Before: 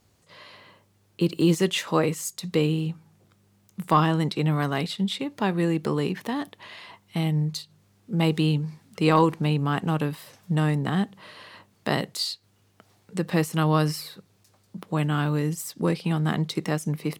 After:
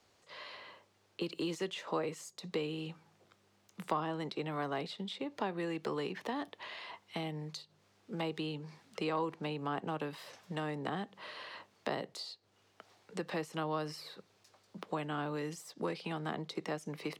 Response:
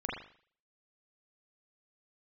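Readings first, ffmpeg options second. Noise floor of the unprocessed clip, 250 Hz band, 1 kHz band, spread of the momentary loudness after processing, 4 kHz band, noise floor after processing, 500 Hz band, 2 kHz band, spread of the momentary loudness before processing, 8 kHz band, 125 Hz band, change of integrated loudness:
−64 dBFS, −15.0 dB, −11.0 dB, 12 LU, −11.5 dB, −71 dBFS, −10.5 dB, −10.5 dB, 16 LU, −16.0 dB, −20.0 dB, −14.0 dB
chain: -filter_complex "[0:a]acrossover=split=160|900[link_01][link_02][link_03];[link_01]acompressor=threshold=-39dB:ratio=4[link_04];[link_02]acompressor=threshold=-32dB:ratio=4[link_05];[link_03]acompressor=threshold=-44dB:ratio=4[link_06];[link_04][link_05][link_06]amix=inputs=3:normalize=0,acrossover=split=340 6800:gain=0.2 1 0.224[link_07][link_08][link_09];[link_07][link_08][link_09]amix=inputs=3:normalize=0"

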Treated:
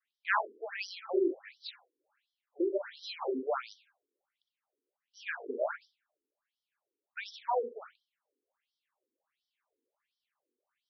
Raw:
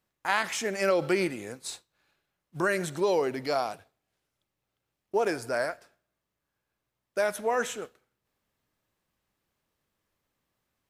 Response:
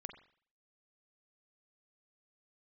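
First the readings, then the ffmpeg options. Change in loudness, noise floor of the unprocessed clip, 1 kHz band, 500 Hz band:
−6.5 dB, −85 dBFS, −5.5 dB, −7.0 dB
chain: -filter_complex "[0:a]adynamicequalizer=threshold=0.0158:dfrequency=470:dqfactor=1:tfrequency=470:tqfactor=1:attack=5:release=100:ratio=0.375:range=1.5:mode=cutabove:tftype=bell[link_01];[1:a]atrim=start_sample=2205,atrim=end_sample=4410[link_02];[link_01][link_02]afir=irnorm=-1:irlink=0,afftfilt=real='re*between(b*sr/1024,340*pow(4300/340,0.5+0.5*sin(2*PI*1.4*pts/sr))/1.41,340*pow(4300/340,0.5+0.5*sin(2*PI*1.4*pts/sr))*1.41)':imag='im*between(b*sr/1024,340*pow(4300/340,0.5+0.5*sin(2*PI*1.4*pts/sr))/1.41,340*pow(4300/340,0.5+0.5*sin(2*PI*1.4*pts/sr))*1.41)':win_size=1024:overlap=0.75,volume=6dB"

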